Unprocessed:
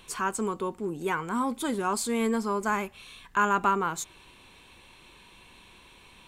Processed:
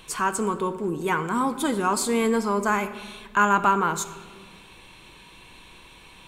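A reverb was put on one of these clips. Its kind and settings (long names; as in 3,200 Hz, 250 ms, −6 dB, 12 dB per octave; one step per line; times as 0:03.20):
rectangular room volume 1,900 cubic metres, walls mixed, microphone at 0.58 metres
level +4.5 dB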